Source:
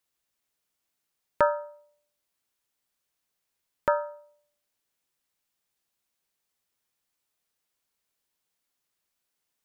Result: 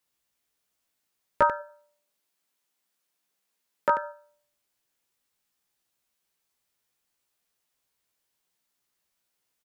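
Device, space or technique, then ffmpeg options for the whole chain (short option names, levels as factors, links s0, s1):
slapback doubling: -filter_complex "[0:a]asplit=3[s0][s1][s2];[s0]afade=t=out:st=1.59:d=0.02[s3];[s1]highpass=f=150:w=0.5412,highpass=f=150:w=1.3066,afade=t=in:st=1.59:d=0.02,afade=t=out:st=4.02:d=0.02[s4];[s2]afade=t=in:st=4.02:d=0.02[s5];[s3][s4][s5]amix=inputs=3:normalize=0,asplit=3[s6][s7][s8];[s7]adelay=16,volume=0.708[s9];[s8]adelay=91,volume=0.355[s10];[s6][s9][s10]amix=inputs=3:normalize=0"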